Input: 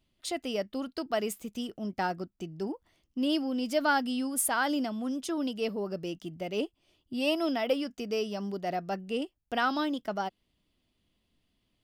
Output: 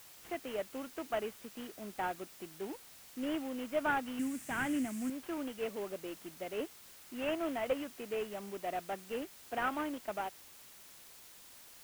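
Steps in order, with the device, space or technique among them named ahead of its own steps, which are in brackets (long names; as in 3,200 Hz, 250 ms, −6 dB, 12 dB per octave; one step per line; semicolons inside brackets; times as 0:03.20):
army field radio (band-pass filter 300–3,200 Hz; variable-slope delta modulation 16 kbit/s; white noise bed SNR 16 dB)
0:04.19–0:05.10: octave-band graphic EQ 125/250/500/1,000/2,000/4,000/8,000 Hz +7/+7/−6/−5/+4/−4/+11 dB
level −4.5 dB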